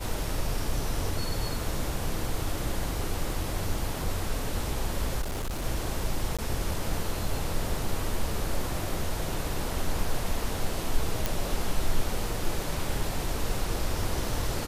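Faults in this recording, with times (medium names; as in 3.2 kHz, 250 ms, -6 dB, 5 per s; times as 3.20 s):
5.21–5.66 s: clipped -28 dBFS
6.37–6.39 s: dropout 16 ms
11.26 s: pop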